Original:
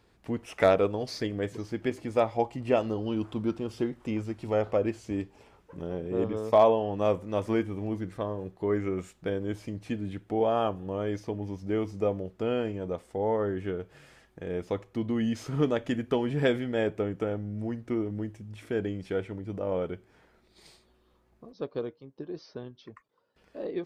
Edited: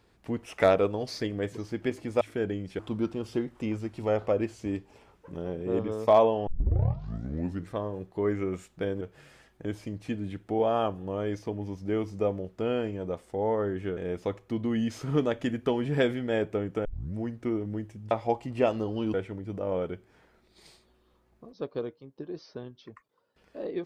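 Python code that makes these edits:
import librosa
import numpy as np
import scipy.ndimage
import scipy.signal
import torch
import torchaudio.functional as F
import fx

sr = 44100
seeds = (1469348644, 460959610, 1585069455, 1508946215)

y = fx.edit(x, sr, fx.swap(start_s=2.21, length_s=1.03, other_s=18.56, other_length_s=0.58),
    fx.tape_start(start_s=6.92, length_s=1.22),
    fx.move(start_s=13.78, length_s=0.64, to_s=9.46),
    fx.tape_start(start_s=17.3, length_s=0.3), tone=tone)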